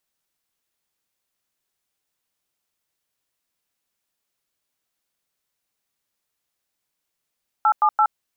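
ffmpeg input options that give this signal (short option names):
-f lavfi -i "aevalsrc='0.158*clip(min(mod(t,0.169),0.071-mod(t,0.169))/0.002,0,1)*(eq(floor(t/0.169),0)*(sin(2*PI*852*mod(t,0.169))+sin(2*PI*1336*mod(t,0.169)))+eq(floor(t/0.169),1)*(sin(2*PI*852*mod(t,0.169))+sin(2*PI*1209*mod(t,0.169)))+eq(floor(t/0.169),2)*(sin(2*PI*852*mod(t,0.169))+sin(2*PI*1336*mod(t,0.169))))':d=0.507:s=44100"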